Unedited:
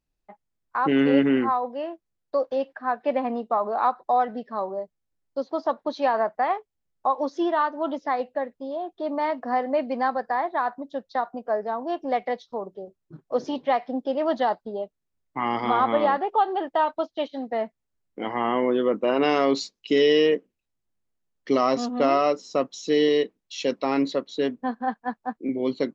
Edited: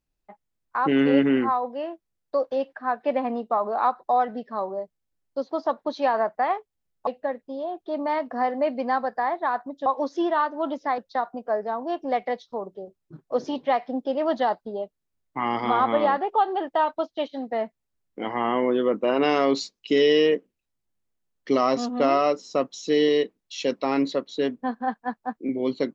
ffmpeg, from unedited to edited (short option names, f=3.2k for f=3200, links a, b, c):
-filter_complex "[0:a]asplit=4[a][b][c][d];[a]atrim=end=7.072[e];[b]atrim=start=8.188:end=10.982[f];[c]atrim=start=7.068:end=8.192[g];[d]atrim=start=10.978[h];[e][f]acrossfade=d=0.004:c1=hsin:c2=hsin[i];[i][g]acrossfade=d=0.004:c1=hsin:c2=hsin[j];[j][h]acrossfade=d=0.004:c1=hsin:c2=hsin"